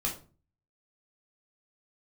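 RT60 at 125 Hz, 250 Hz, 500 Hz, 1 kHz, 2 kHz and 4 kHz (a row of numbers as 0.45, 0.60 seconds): 0.65, 0.55, 0.40, 0.35, 0.30, 0.25 seconds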